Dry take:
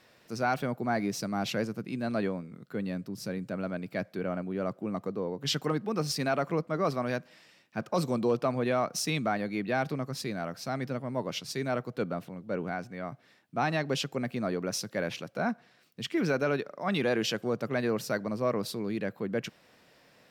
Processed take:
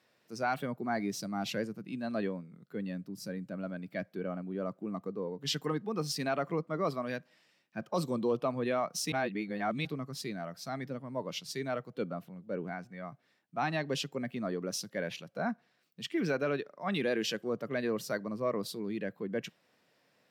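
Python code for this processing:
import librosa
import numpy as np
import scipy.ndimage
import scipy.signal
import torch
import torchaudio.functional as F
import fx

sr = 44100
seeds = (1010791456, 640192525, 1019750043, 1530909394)

y = fx.edit(x, sr, fx.reverse_span(start_s=9.12, length_s=0.73), tone=tone)
y = fx.noise_reduce_blind(y, sr, reduce_db=7)
y = scipy.signal.sosfilt(scipy.signal.butter(2, 110.0, 'highpass', fs=sr, output='sos'), y)
y = y * librosa.db_to_amplitude(-3.0)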